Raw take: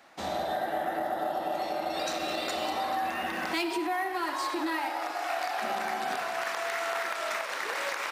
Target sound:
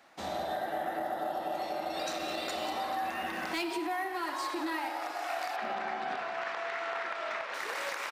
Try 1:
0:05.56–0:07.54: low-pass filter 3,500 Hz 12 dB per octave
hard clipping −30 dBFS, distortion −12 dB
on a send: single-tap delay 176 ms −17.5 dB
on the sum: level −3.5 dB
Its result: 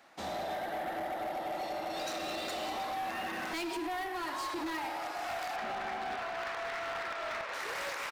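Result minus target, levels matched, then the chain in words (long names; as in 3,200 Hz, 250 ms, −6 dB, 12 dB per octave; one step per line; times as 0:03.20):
hard clipping: distortion +24 dB
0:05.56–0:07.54: low-pass filter 3,500 Hz 12 dB per octave
hard clipping −22 dBFS, distortion −36 dB
on a send: single-tap delay 176 ms −17.5 dB
on the sum: level −3.5 dB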